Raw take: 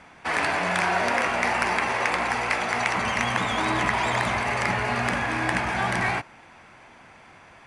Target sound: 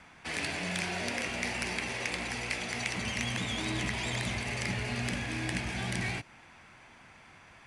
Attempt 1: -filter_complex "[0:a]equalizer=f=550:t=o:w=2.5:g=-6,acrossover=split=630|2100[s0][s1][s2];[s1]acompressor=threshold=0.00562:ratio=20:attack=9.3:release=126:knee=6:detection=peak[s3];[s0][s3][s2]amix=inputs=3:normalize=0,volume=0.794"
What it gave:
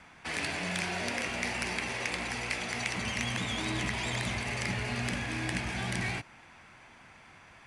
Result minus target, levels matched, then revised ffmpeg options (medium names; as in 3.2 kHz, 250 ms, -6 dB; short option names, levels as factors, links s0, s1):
compression: peak gain reduction -6.5 dB
-filter_complex "[0:a]equalizer=f=550:t=o:w=2.5:g=-6,acrossover=split=630|2100[s0][s1][s2];[s1]acompressor=threshold=0.00251:ratio=20:attack=9.3:release=126:knee=6:detection=peak[s3];[s0][s3][s2]amix=inputs=3:normalize=0,volume=0.794"